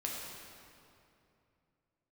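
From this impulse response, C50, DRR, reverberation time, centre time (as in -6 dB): -0.5 dB, -3.5 dB, 2.7 s, 121 ms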